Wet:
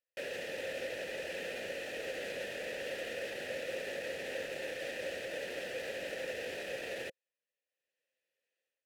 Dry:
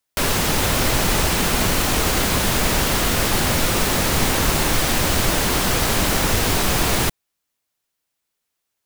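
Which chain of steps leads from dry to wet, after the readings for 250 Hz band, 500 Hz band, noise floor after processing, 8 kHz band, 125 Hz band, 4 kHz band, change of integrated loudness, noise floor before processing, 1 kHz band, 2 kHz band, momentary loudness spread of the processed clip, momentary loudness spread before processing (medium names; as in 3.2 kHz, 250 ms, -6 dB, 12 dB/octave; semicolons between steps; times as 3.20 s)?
-27.0 dB, -13.0 dB, under -85 dBFS, -31.0 dB, -36.0 dB, -23.0 dB, -21.0 dB, -78 dBFS, -29.0 dB, -17.0 dB, 1 LU, 0 LU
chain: treble shelf 6.7 kHz +8.5 dB; level rider gain up to 10 dB; peak limiter -11.5 dBFS, peak gain reduction 10 dB; vowel filter e; trim -2.5 dB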